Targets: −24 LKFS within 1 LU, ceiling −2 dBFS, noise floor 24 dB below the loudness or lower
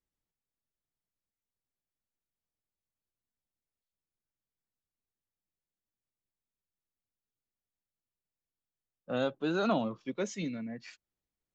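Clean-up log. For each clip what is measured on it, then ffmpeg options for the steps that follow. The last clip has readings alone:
integrated loudness −34.0 LKFS; sample peak −17.0 dBFS; target loudness −24.0 LKFS
→ -af "volume=10dB"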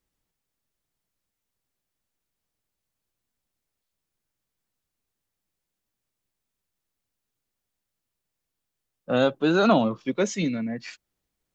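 integrated loudness −24.0 LKFS; sample peak −7.0 dBFS; background noise floor −84 dBFS

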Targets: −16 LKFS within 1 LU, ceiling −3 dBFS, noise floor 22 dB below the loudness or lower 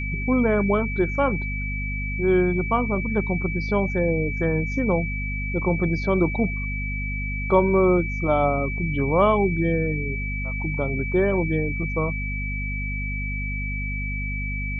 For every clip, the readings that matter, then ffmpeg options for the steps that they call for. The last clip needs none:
mains hum 50 Hz; hum harmonics up to 250 Hz; level of the hum −26 dBFS; interfering tone 2,300 Hz; level of the tone −30 dBFS; integrated loudness −23.5 LKFS; sample peak −5.0 dBFS; target loudness −16.0 LKFS
→ -af "bandreject=frequency=50:width_type=h:width=4,bandreject=frequency=100:width_type=h:width=4,bandreject=frequency=150:width_type=h:width=4,bandreject=frequency=200:width_type=h:width=4,bandreject=frequency=250:width_type=h:width=4"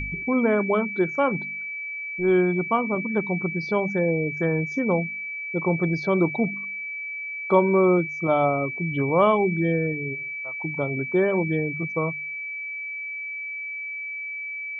mains hum none found; interfering tone 2,300 Hz; level of the tone −30 dBFS
→ -af "bandreject=frequency=2300:width=30"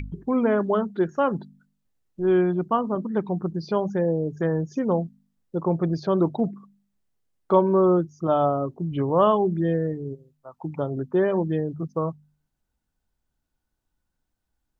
interfering tone none found; integrated loudness −24.0 LKFS; sample peak −6.0 dBFS; target loudness −16.0 LKFS
→ -af "volume=8dB,alimiter=limit=-3dB:level=0:latency=1"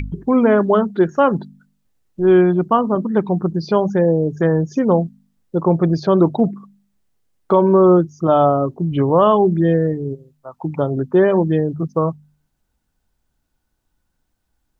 integrated loudness −16.5 LKFS; sample peak −3.0 dBFS; background noise floor −72 dBFS

